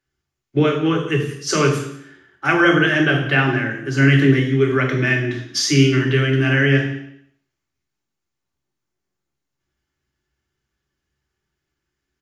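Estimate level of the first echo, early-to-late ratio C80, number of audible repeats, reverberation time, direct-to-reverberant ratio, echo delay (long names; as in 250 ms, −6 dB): −17.5 dB, 10.0 dB, 1, 0.70 s, 1.0 dB, 175 ms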